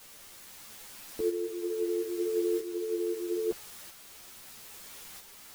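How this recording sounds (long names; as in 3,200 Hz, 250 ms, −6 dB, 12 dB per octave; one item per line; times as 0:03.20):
a quantiser's noise floor 8 bits, dither triangular
tremolo saw up 0.77 Hz, depth 45%
a shimmering, thickened sound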